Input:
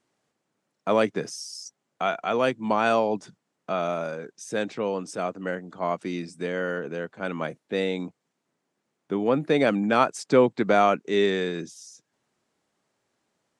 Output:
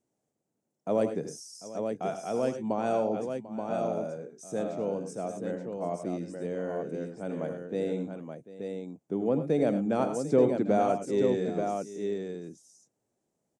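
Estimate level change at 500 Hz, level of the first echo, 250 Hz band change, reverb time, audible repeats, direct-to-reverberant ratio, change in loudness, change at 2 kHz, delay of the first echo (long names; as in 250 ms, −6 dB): −3.5 dB, −10.5 dB, −2.5 dB, no reverb audible, 4, no reverb audible, −5.0 dB, −15.5 dB, 81 ms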